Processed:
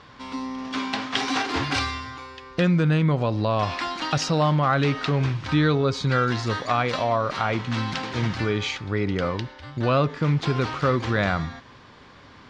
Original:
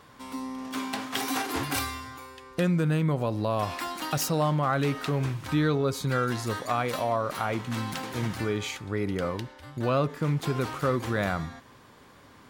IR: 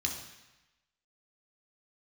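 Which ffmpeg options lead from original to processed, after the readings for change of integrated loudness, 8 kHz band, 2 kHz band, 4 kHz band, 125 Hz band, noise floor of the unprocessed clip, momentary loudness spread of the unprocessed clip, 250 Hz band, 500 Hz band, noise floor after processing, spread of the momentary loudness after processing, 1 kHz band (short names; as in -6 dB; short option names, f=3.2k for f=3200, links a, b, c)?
+4.5 dB, -1.5 dB, +6.0 dB, +6.5 dB, +5.5 dB, -53 dBFS, 9 LU, +4.5 dB, +3.5 dB, -48 dBFS, 10 LU, +5.0 dB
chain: -af "lowpass=f=5.4k:w=0.5412,lowpass=f=5.4k:w=1.3066,equalizer=f=420:w=0.35:g=-4,volume=7.5dB"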